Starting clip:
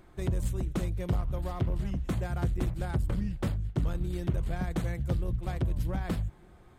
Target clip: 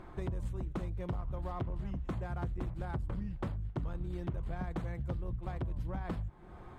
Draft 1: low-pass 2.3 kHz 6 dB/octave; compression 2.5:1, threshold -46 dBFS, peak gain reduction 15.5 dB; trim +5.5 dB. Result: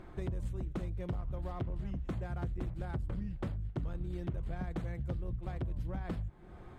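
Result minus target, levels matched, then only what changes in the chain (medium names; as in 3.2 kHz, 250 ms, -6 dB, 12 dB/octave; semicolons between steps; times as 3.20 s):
1 kHz band -3.5 dB
add after compression: peaking EQ 1 kHz +5.5 dB 0.81 oct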